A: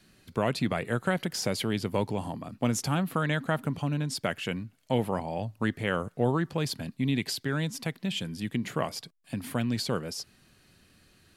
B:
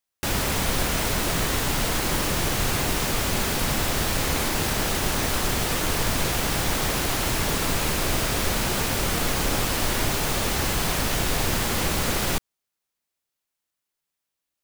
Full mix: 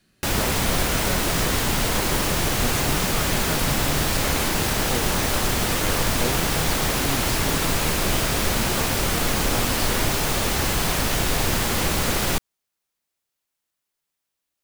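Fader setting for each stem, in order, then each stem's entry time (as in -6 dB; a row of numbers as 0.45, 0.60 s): -4.0, +2.0 dB; 0.00, 0.00 s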